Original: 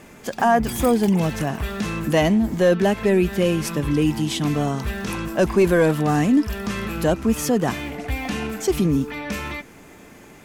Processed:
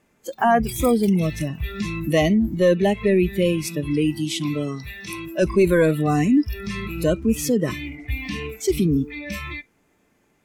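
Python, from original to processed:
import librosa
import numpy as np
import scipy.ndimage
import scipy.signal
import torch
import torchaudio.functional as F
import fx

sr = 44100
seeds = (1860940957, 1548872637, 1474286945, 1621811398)

y = fx.highpass(x, sr, hz=fx.line((3.52, 120.0), (5.41, 290.0)), slope=6, at=(3.52, 5.41), fade=0.02)
y = fx.noise_reduce_blind(y, sr, reduce_db=19)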